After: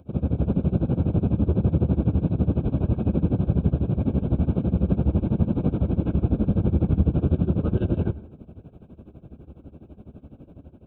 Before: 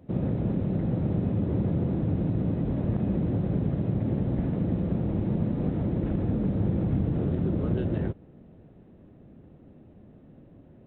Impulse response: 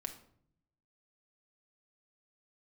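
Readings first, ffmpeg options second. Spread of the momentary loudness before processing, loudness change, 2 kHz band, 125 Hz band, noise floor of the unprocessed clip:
1 LU, +4.0 dB, n/a, +4.5 dB, -53 dBFS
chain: -filter_complex "[0:a]equalizer=f=73:t=o:w=0.31:g=12.5,asplit=2[a][b];[b]alimiter=limit=-23dB:level=0:latency=1:release=303,volume=-2dB[c];[a][c]amix=inputs=2:normalize=0,dynaudnorm=f=140:g=5:m=4dB,tremolo=f=12:d=0.93,asuperstop=centerf=1900:order=20:qfactor=3.4,asplit=2[d][e];[1:a]atrim=start_sample=2205,adelay=107[f];[e][f]afir=irnorm=-1:irlink=0,volume=-16dB[g];[d][g]amix=inputs=2:normalize=0"

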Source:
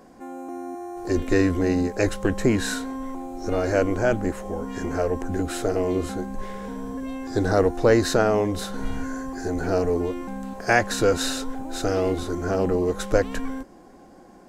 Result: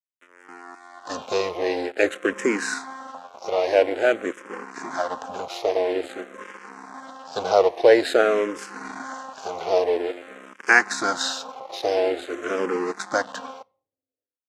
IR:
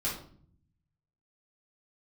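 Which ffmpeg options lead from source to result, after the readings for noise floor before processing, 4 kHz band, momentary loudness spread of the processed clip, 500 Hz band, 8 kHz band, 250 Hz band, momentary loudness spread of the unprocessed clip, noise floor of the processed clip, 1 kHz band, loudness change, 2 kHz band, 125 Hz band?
-49 dBFS, +2.0 dB, 22 LU, +1.5 dB, -1.5 dB, -7.0 dB, 13 LU, under -85 dBFS, +2.0 dB, +1.5 dB, +5.0 dB, under -20 dB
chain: -filter_complex "[0:a]aeval=exprs='sgn(val(0))*max(abs(val(0))-0.0251,0)':c=same,highpass=470,lowpass=6.5k,asplit=2[a][b];[1:a]atrim=start_sample=2205[c];[b][c]afir=irnorm=-1:irlink=0,volume=-28.5dB[d];[a][d]amix=inputs=2:normalize=0,asplit=2[e][f];[f]afreqshift=-0.49[g];[e][g]amix=inputs=2:normalize=1,volume=8dB"

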